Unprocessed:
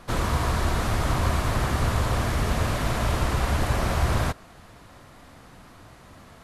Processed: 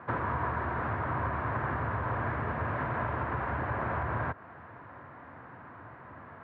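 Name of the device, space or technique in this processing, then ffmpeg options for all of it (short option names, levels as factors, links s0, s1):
bass amplifier: -af "acompressor=threshold=0.0355:ratio=3,highpass=f=85:w=0.5412,highpass=f=85:w=1.3066,equalizer=f=190:t=q:w=4:g=-6,equalizer=f=980:t=q:w=4:g=6,equalizer=f=1600:t=q:w=4:g=6,lowpass=f=2000:w=0.5412,lowpass=f=2000:w=1.3066"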